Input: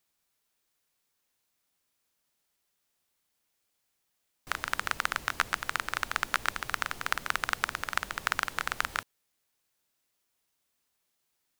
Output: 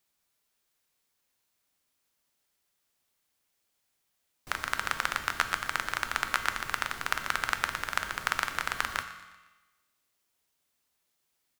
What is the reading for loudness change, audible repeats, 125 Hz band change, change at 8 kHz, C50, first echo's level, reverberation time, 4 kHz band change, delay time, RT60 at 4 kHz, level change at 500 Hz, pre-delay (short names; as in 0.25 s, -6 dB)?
+0.5 dB, 3, +1.0 dB, +0.5 dB, 10.0 dB, -17.5 dB, 1.2 s, +1.0 dB, 0.119 s, 1.1 s, +0.5 dB, 4 ms